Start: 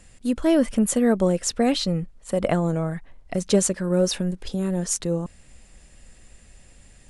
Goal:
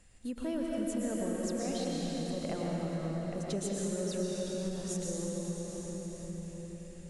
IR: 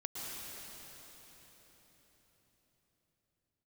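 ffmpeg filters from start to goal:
-filter_complex "[1:a]atrim=start_sample=2205[s0];[0:a][s0]afir=irnorm=-1:irlink=0,acompressor=threshold=0.0282:ratio=2,volume=0.473"

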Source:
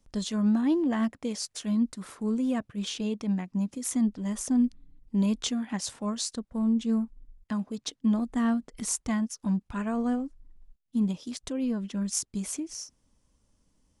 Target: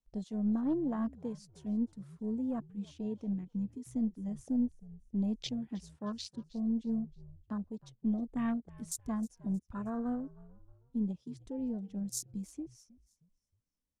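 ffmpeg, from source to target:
-filter_complex "[0:a]aeval=exprs='0.224*(cos(1*acos(clip(val(0)/0.224,-1,1)))-cos(1*PI/2))+0.0282*(cos(2*acos(clip(val(0)/0.224,-1,1)))-cos(2*PI/2))':c=same,afwtdn=0.0178,asplit=4[s0][s1][s2][s3];[s1]adelay=313,afreqshift=-71,volume=0.0891[s4];[s2]adelay=626,afreqshift=-142,volume=0.0347[s5];[s3]adelay=939,afreqshift=-213,volume=0.0135[s6];[s0][s4][s5][s6]amix=inputs=4:normalize=0,volume=0.447"

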